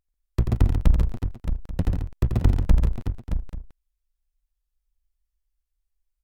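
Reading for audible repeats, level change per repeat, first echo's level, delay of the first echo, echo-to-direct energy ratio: 4, repeats not evenly spaced, −7.0 dB, 86 ms, −2.0 dB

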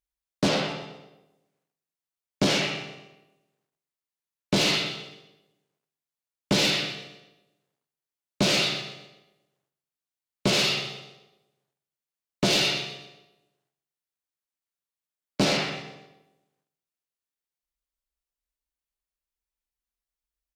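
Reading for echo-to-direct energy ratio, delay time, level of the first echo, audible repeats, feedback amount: −13.5 dB, 125 ms, −14.0 dB, 3, 38%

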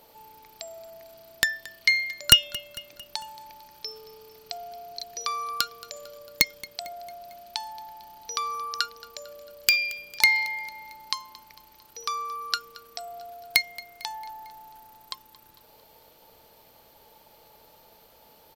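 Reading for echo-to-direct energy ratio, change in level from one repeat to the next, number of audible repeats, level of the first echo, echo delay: −18.5 dB, −5.0 dB, 3, −20.0 dB, 225 ms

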